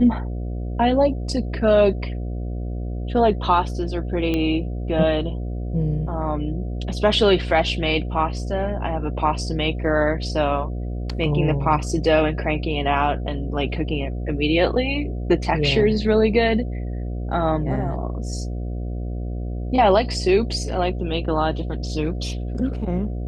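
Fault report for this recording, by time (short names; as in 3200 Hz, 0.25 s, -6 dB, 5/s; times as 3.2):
buzz 60 Hz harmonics 12 -27 dBFS
4.34 pop -12 dBFS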